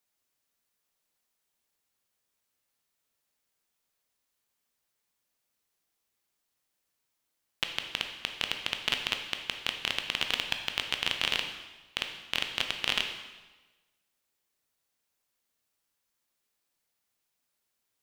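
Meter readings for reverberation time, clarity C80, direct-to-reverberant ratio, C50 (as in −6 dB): 1.2 s, 9.0 dB, 4.5 dB, 7.0 dB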